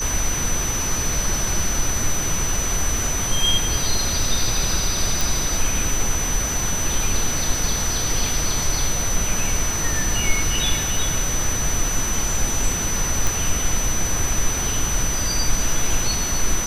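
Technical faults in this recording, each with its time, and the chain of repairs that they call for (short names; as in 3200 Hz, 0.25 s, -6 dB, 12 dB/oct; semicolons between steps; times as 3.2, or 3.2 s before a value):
tone 6000 Hz -24 dBFS
5.21 pop
13.27 pop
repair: de-click; notch 6000 Hz, Q 30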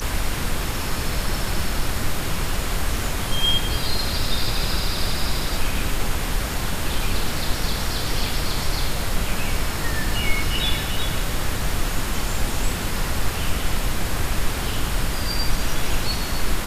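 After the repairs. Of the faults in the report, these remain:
none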